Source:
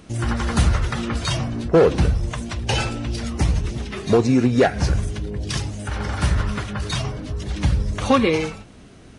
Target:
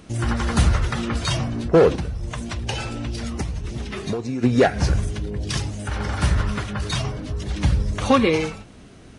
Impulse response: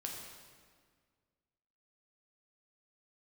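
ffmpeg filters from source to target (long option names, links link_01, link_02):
-filter_complex "[0:a]asplit=3[link_01][link_02][link_03];[link_01]afade=type=out:start_time=1.95:duration=0.02[link_04];[link_02]acompressor=threshold=-23dB:ratio=12,afade=type=in:start_time=1.95:duration=0.02,afade=type=out:start_time=4.42:duration=0.02[link_05];[link_03]afade=type=in:start_time=4.42:duration=0.02[link_06];[link_04][link_05][link_06]amix=inputs=3:normalize=0"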